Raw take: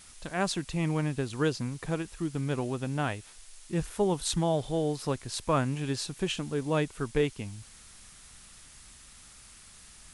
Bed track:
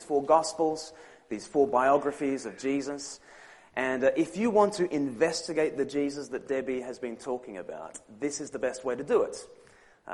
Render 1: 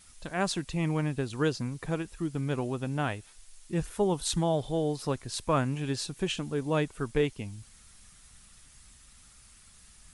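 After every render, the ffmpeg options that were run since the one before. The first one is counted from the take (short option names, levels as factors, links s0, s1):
-af "afftdn=nr=6:nf=-53"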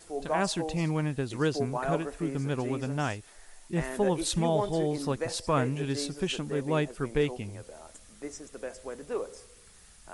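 -filter_complex "[1:a]volume=0.376[s0];[0:a][s0]amix=inputs=2:normalize=0"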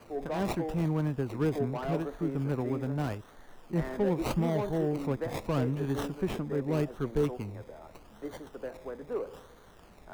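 -filter_complex "[0:a]acrossover=split=300|440|2100[s0][s1][s2][s3];[s2]asoftclip=type=tanh:threshold=0.0178[s4];[s3]acrusher=samples=24:mix=1:aa=0.000001:lfo=1:lforange=14.4:lforate=0.81[s5];[s0][s1][s4][s5]amix=inputs=4:normalize=0"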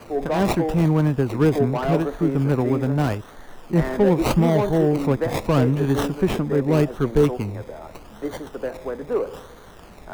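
-af "volume=3.55"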